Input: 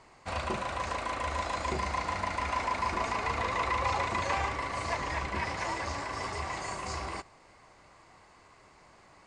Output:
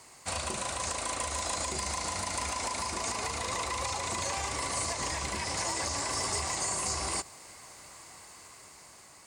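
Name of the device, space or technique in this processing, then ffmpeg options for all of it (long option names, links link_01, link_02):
FM broadcast chain: -filter_complex "[0:a]highpass=50,dynaudnorm=framelen=560:gausssize=5:maxgain=4dB,acrossover=split=1100|2900[link_01][link_02][link_03];[link_01]acompressor=threshold=-32dB:ratio=4[link_04];[link_02]acompressor=threshold=-44dB:ratio=4[link_05];[link_03]acompressor=threshold=-44dB:ratio=4[link_06];[link_04][link_05][link_06]amix=inputs=3:normalize=0,aemphasis=mode=production:type=50fm,alimiter=level_in=1dB:limit=-24dB:level=0:latency=1:release=84,volume=-1dB,asoftclip=type=hard:threshold=-26dB,lowpass=frequency=15000:width=0.5412,lowpass=frequency=15000:width=1.3066,aemphasis=mode=production:type=50fm"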